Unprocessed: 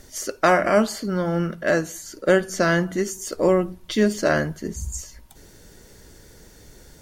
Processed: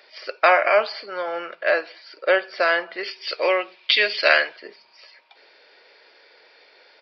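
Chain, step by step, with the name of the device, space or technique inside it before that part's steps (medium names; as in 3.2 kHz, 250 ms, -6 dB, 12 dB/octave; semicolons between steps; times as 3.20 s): 3.03–4.56 s: frequency weighting D; musical greeting card (resampled via 11.025 kHz; high-pass 520 Hz 24 dB/octave; peaking EQ 2.4 kHz +12 dB 0.24 oct); trim +2 dB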